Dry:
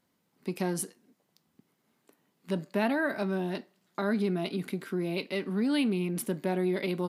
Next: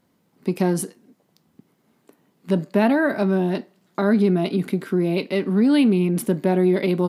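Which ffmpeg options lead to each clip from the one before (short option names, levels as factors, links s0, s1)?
-af "tiltshelf=f=970:g=3.5,volume=2.51"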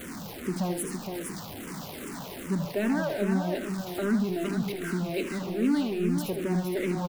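-filter_complex "[0:a]aeval=exprs='val(0)+0.5*0.0708*sgn(val(0))':c=same,aecho=1:1:78|462:0.398|0.501,asplit=2[s0][s1];[s1]afreqshift=-2.5[s2];[s0][s2]amix=inputs=2:normalize=1,volume=0.376"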